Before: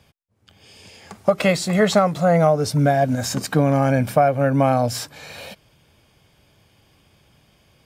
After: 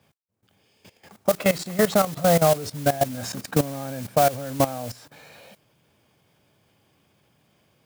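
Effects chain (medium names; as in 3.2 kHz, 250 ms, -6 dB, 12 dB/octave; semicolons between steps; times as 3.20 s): high-pass 120 Hz 12 dB/octave; treble shelf 2.7 kHz -7 dB; modulation noise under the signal 11 dB; level held to a coarse grid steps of 16 dB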